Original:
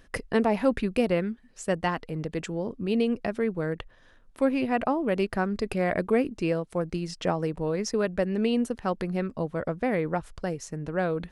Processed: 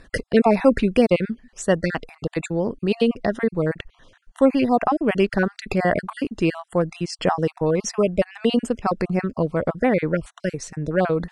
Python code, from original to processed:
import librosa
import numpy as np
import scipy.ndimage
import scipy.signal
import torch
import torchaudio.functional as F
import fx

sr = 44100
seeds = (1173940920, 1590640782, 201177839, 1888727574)

y = fx.spec_dropout(x, sr, seeds[0], share_pct=33)
y = scipy.signal.sosfilt(scipy.signal.butter(4, 10000.0, 'lowpass', fs=sr, output='sos'), y)
y = y * 10.0 ** (8.0 / 20.0)